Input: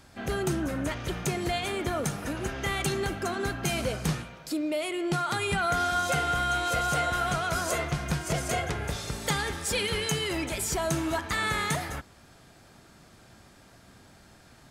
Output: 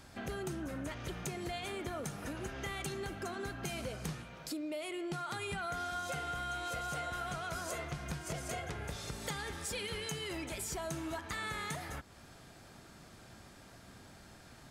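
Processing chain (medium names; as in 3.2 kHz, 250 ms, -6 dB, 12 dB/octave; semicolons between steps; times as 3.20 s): compression 2.5:1, threshold -41 dBFS, peak gain reduction 12 dB; trim -1 dB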